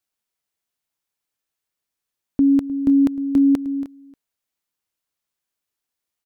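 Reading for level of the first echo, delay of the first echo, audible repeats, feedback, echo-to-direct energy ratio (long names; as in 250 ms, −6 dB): −16.0 dB, 307 ms, 1, repeats not evenly spaced, −16.0 dB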